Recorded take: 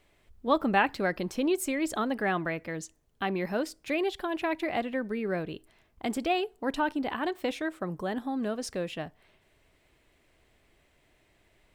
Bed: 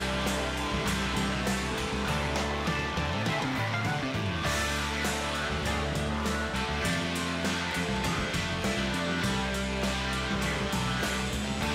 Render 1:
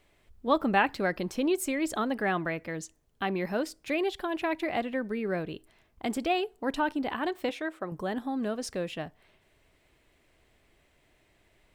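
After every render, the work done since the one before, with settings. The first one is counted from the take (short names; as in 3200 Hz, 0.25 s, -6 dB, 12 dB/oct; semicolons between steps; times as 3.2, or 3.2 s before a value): 7.49–7.92 tone controls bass -9 dB, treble -5 dB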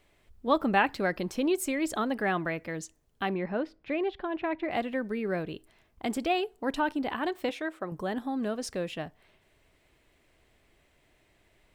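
3.34–4.71 air absorption 350 m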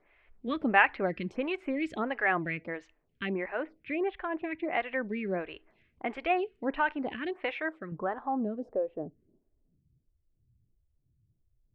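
low-pass sweep 2300 Hz -> 120 Hz, 7.61–10.07; photocell phaser 1.5 Hz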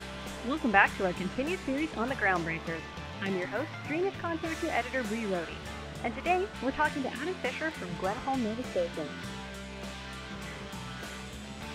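add bed -11 dB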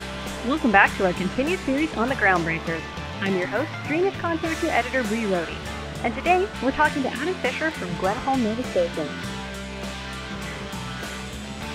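gain +8.5 dB; limiter -2 dBFS, peak gain reduction 3 dB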